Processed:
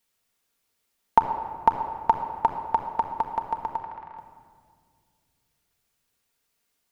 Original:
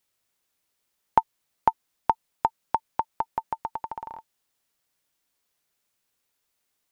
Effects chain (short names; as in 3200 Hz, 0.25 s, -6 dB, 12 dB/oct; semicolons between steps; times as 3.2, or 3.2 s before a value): 3.77–4.18 band-pass 1900 Hz, Q 1.4; shoebox room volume 3500 m³, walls mixed, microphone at 1.7 m